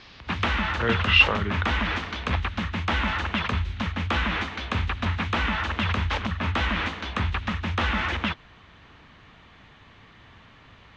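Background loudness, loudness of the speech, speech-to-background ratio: −27.0 LKFS, −21.0 LKFS, 6.0 dB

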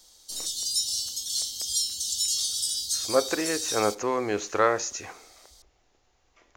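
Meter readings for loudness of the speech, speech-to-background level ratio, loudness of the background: −27.0 LKFS, 0.5 dB, −27.5 LKFS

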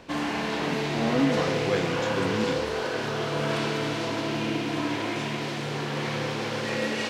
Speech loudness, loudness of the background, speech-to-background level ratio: −30.0 LKFS, −28.5 LKFS, −1.5 dB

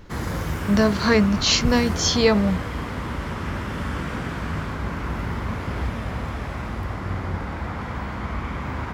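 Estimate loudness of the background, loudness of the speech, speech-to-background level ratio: −29.0 LKFS, −20.0 LKFS, 9.0 dB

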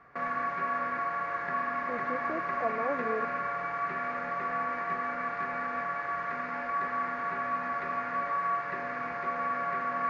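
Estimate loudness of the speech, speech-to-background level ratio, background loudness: −37.0 LKFS, −5.0 dB, −32.0 LKFS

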